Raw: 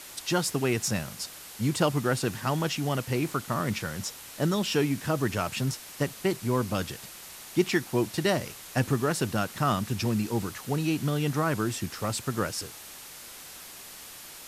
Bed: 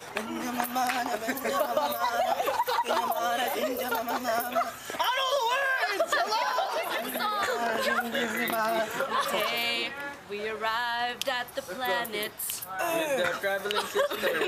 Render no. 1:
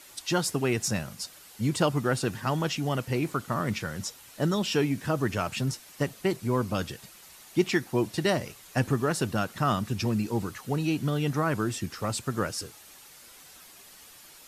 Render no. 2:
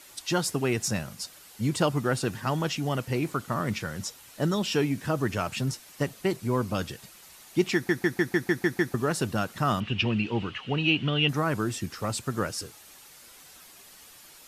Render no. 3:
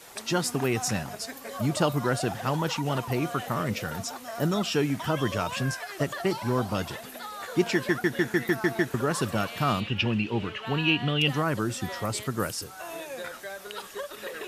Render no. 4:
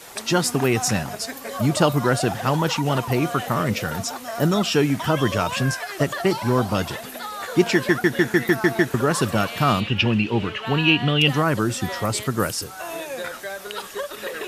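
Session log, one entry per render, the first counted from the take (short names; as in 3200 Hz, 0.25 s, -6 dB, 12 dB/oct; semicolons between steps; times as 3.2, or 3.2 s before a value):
denoiser 8 dB, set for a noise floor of -45 dBFS
7.74 stutter in place 0.15 s, 8 plays; 9.8–11.29 synth low-pass 2900 Hz, resonance Q 7.6
add bed -10 dB
gain +6.5 dB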